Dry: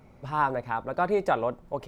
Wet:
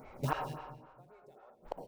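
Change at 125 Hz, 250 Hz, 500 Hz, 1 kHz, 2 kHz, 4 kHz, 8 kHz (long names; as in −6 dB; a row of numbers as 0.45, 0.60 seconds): −3.5 dB, −11.5 dB, −18.0 dB, −14.0 dB, −14.0 dB, −6.0 dB, can't be measured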